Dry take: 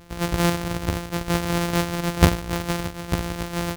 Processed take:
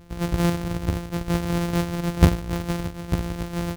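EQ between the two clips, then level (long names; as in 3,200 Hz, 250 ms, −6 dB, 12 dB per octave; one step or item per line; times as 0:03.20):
low-shelf EQ 430 Hz +8 dB
−6.0 dB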